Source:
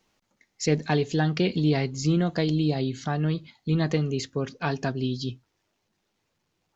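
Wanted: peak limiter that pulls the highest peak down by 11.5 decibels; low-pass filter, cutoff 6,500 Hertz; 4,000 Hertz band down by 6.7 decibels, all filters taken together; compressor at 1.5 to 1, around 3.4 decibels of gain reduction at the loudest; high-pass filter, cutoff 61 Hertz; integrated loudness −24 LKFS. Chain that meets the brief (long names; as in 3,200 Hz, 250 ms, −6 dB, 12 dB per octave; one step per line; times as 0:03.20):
high-pass filter 61 Hz
low-pass filter 6,500 Hz
parametric band 4,000 Hz −8 dB
downward compressor 1.5 to 1, threshold −27 dBFS
level +11.5 dB
brickwall limiter −14.5 dBFS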